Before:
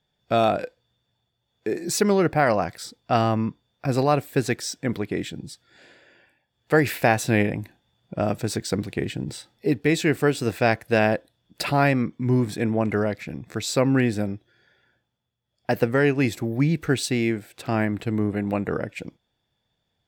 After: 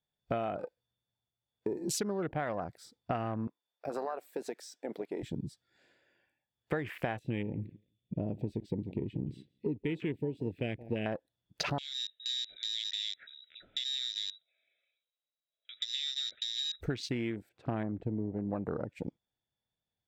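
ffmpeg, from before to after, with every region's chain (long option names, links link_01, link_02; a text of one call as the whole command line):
ffmpeg -i in.wav -filter_complex "[0:a]asettb=1/sr,asplit=3[link_01][link_02][link_03];[link_01]atrim=end=3.474[link_04];[link_02]atrim=start=3.47:end=5.23,asetpts=PTS-STARTPTS,afade=type=in:duration=0.004:curve=qsin,afade=type=out:start_time=1.756:duration=0.004:curve=qsin,highpass=540,acompressor=threshold=-28dB:ratio=6:attack=3.2:release=140:knee=1:detection=peak[link_05];[link_03]atrim=start=5.226[link_06];[link_04][link_05]acrossfade=duration=0.004:curve1=hsin:curve2=qsin[link_07];[link_07][link_06]acrossfade=duration=0.004:curve1=qsin:curve2=hsin,asettb=1/sr,asplit=3[link_08][link_09][link_10];[link_08]atrim=end=7.194[link_11];[link_09]atrim=start=7.19:end=11.06,asetpts=PTS-STARTPTS,afade=type=in:duration=0.004:curve=qsin,afade=type=out:start_time=3.866:duration=0.004:curve=qsin,asuperstop=centerf=1100:order=4:qfactor=0.53,highshelf=frequency=4200:width_type=q:width=1.5:gain=-13,asplit=2[link_12][link_13];[link_13]adelay=171,lowpass=frequency=1700:poles=1,volume=-19.5dB,asplit=2[link_14][link_15];[link_15]adelay=171,lowpass=frequency=1700:poles=1,volume=0.21[link_16];[link_12][link_14][link_16]amix=inputs=3:normalize=0,atrim=end_sample=170667[link_17];[link_10]atrim=start=11.056[link_18];[link_11][link_17]acrossfade=duration=0.004:curve1=hsin:curve2=qsin[link_19];[link_19][link_18]acrossfade=duration=0.004:curve1=qsin:curve2=hsin,asettb=1/sr,asplit=3[link_20][link_21][link_22];[link_20]atrim=end=11.784[link_23];[link_21]atrim=start=11.78:end=16.81,asetpts=PTS-STARTPTS,afade=type=in:duration=0.004:curve=qsin,afade=type=out:start_time=5.026:duration=0.004:curve=qsin,acompressor=threshold=-31dB:ratio=4:attack=3.2:release=140:knee=1:detection=peak,asuperstop=centerf=3000:order=12:qfactor=5.9,lowpass=frequency=3400:width_type=q:width=0.5098,lowpass=frequency=3400:width_type=q:width=0.6013,lowpass=frequency=3400:width_type=q:width=0.9,lowpass=frequency=3400:width_type=q:width=2.563,afreqshift=-4000[link_24];[link_22]atrim=start=16.806[link_25];[link_23][link_24]acrossfade=duration=0.004:curve1=hsin:curve2=qsin[link_26];[link_26][link_25]acrossfade=duration=0.004:curve1=qsin:curve2=hsin,asettb=1/sr,asplit=3[link_27][link_28][link_29];[link_27]atrim=end=17.494[link_30];[link_28]atrim=start=17.49:end=18.56,asetpts=PTS-STARTPTS,afade=type=in:duration=0.004:curve=qsin,afade=type=out:start_time=1.066:duration=0.004:curve=qsin,lowpass=5800,highshelf=frequency=2300:gain=-10.5[link_31];[link_29]atrim=start=18.556[link_32];[link_30][link_31]acrossfade=duration=0.004:curve1=hsin:curve2=qsin[link_33];[link_33][link_32]acrossfade=duration=0.004:curve1=qsin:curve2=hsin,afwtdn=0.0251,acompressor=threshold=-31dB:ratio=10" out.wav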